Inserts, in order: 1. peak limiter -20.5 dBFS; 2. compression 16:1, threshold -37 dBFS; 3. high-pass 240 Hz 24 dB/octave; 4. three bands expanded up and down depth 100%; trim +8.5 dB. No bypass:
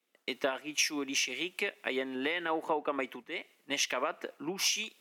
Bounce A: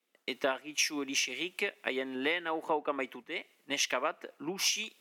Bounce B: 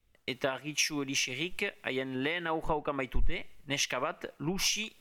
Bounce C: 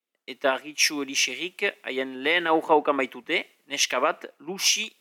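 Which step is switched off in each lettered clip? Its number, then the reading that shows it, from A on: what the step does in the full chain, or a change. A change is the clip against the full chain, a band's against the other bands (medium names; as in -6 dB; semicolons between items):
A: 1, crest factor change +2.0 dB; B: 3, 125 Hz band +15.0 dB; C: 2, mean gain reduction 6.0 dB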